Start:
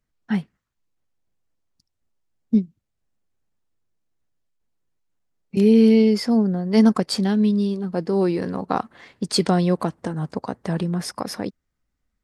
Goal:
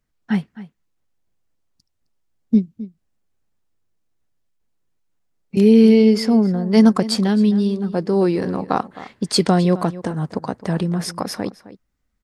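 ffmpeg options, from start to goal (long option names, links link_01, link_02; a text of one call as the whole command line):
ffmpeg -i in.wav -filter_complex "[0:a]asplit=2[link_01][link_02];[link_02]adelay=262.4,volume=-16dB,highshelf=frequency=4000:gain=-5.9[link_03];[link_01][link_03]amix=inputs=2:normalize=0,volume=3dB" out.wav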